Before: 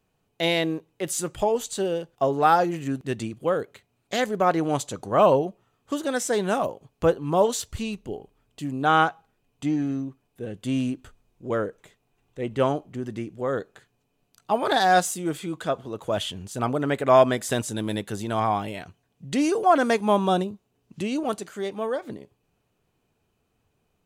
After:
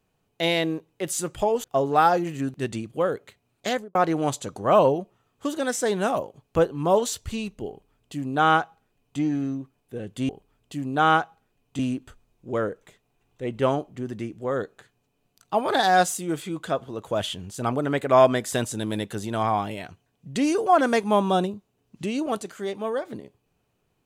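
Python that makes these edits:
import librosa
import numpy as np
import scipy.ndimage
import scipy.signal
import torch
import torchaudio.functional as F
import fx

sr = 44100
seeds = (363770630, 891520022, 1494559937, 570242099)

y = fx.studio_fade_out(x, sr, start_s=4.14, length_s=0.28)
y = fx.edit(y, sr, fx.cut(start_s=1.64, length_s=0.47),
    fx.duplicate(start_s=8.16, length_s=1.5, to_s=10.76), tone=tone)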